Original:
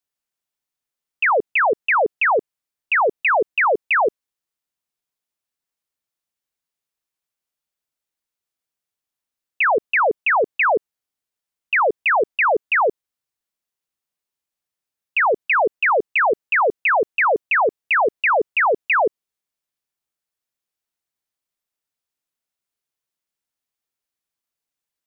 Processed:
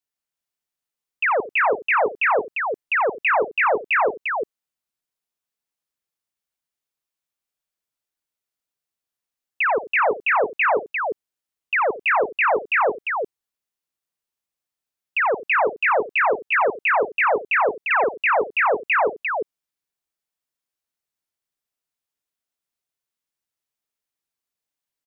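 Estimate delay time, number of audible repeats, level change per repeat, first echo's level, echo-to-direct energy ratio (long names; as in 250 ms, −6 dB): 54 ms, 3, repeats not evenly spaced, −19.5 dB, −4.0 dB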